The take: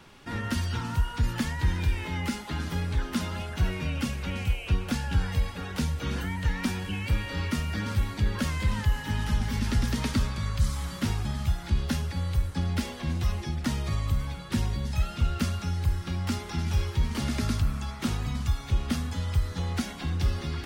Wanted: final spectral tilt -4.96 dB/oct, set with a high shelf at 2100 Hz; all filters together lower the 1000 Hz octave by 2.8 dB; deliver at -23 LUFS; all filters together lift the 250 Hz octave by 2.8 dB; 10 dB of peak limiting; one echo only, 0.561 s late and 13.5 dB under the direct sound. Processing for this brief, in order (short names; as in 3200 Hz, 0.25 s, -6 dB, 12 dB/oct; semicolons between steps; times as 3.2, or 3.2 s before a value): bell 250 Hz +3.5 dB; bell 1000 Hz -5 dB; high shelf 2100 Hz +4.5 dB; limiter -22 dBFS; echo 0.561 s -13.5 dB; gain +8.5 dB